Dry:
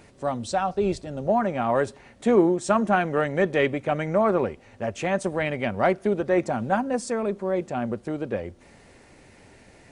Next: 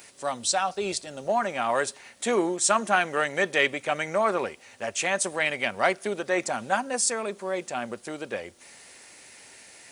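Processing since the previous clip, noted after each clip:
spectral tilt +4.5 dB per octave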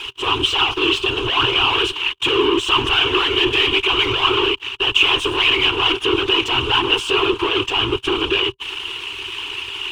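fuzz pedal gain 45 dB, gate −49 dBFS
random phases in short frames
drawn EQ curve 120 Hz 0 dB, 190 Hz −29 dB, 270 Hz −8 dB, 390 Hz +5 dB, 590 Hz −25 dB, 1,000 Hz +4 dB, 2,000 Hz −11 dB, 2,900 Hz +15 dB, 4,400 Hz −12 dB, 12,000 Hz −25 dB
level −2 dB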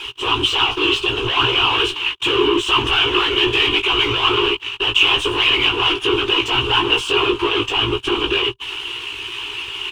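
double-tracking delay 17 ms −4.5 dB
level −1 dB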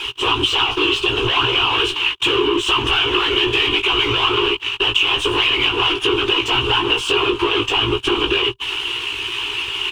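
downward compressor 4 to 1, threshold −18 dBFS, peak gain reduction 8 dB
level +4 dB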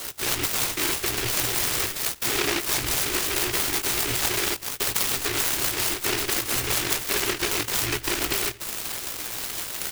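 rectangular room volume 2,600 cubic metres, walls furnished, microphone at 0.46 metres
short delay modulated by noise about 2,100 Hz, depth 0.45 ms
level −8 dB

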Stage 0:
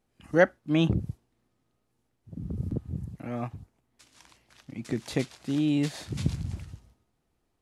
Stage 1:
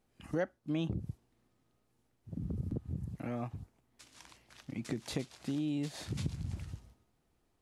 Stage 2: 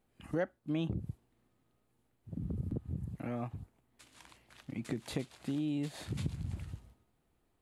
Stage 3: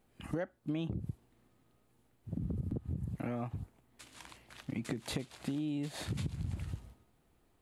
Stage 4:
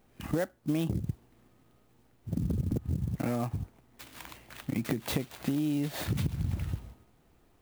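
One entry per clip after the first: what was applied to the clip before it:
dynamic equaliser 1,800 Hz, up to −4 dB, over −44 dBFS, Q 1.1; downward compressor 3 to 1, threshold −35 dBFS, peak gain reduction 14.5 dB
parametric band 5,600 Hz −7 dB 0.61 octaves
downward compressor 6 to 1, threshold −38 dBFS, peak gain reduction 9.5 dB; level +5 dB
converter with an unsteady clock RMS 0.036 ms; level +6.5 dB

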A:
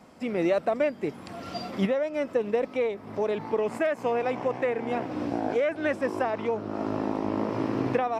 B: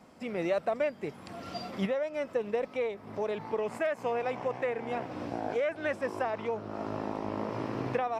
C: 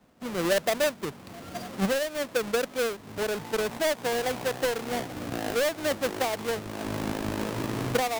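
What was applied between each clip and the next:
dynamic equaliser 290 Hz, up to −6 dB, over −41 dBFS, Q 1.7; level −3.5 dB
each half-wave held at its own peak; multiband upward and downward expander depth 40%

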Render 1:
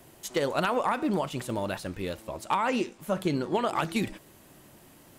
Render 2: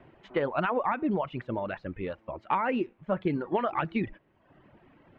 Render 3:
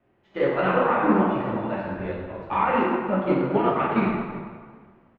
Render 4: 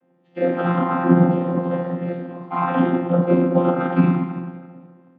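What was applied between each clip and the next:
low-pass filter 2,500 Hz 24 dB per octave; reverb reduction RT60 0.92 s
echo with shifted repeats 264 ms, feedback 37%, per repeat −44 Hz, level −16 dB; dense smooth reverb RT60 2.4 s, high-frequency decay 0.6×, DRR −8.5 dB; expander for the loud parts 1.5 to 1, over −47 dBFS
channel vocoder with a chord as carrier bare fifth, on F3; level +5 dB

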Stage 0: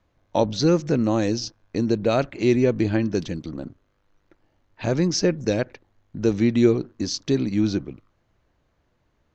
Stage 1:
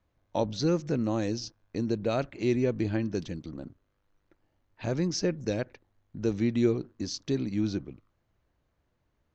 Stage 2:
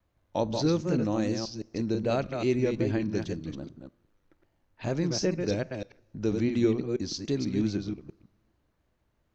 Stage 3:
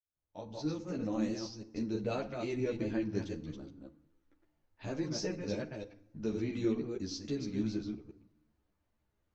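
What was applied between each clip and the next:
parametric band 63 Hz +2.5 dB 2.5 octaves; level −8 dB
delay that plays each chunk backwards 162 ms, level −5 dB; coupled-rooms reverb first 0.47 s, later 2 s, from −18 dB, DRR 19.5 dB; pitch vibrato 2.5 Hz 56 cents
fade in at the beginning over 1.23 s; feedback delay network reverb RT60 0.69 s, low-frequency decay 1.3×, high-frequency decay 0.65×, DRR 11 dB; string-ensemble chorus; level −4.5 dB

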